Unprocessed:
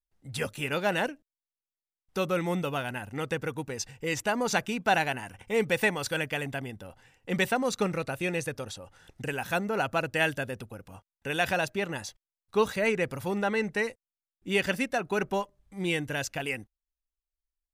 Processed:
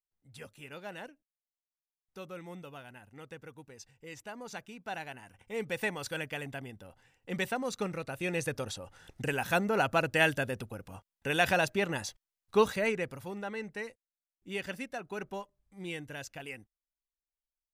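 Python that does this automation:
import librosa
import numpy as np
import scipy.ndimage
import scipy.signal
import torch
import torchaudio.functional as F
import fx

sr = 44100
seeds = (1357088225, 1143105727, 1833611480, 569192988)

y = fx.gain(x, sr, db=fx.line((4.78, -16.0), (5.97, -6.5), (8.06, -6.5), (8.54, 0.5), (12.57, 0.5), (13.34, -10.5)))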